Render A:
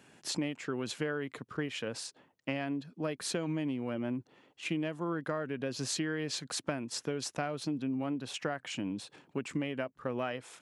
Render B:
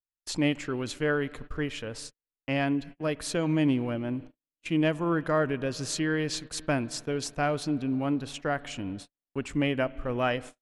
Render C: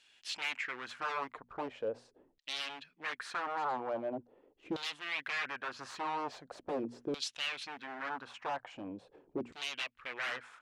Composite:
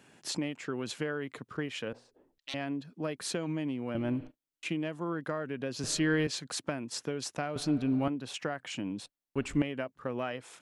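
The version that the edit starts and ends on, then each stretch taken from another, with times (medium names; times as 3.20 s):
A
1.93–2.54 s: from C
3.95–4.63 s: from B
5.84–6.27 s: from B
7.56–8.08 s: from B
9.06–9.62 s: from B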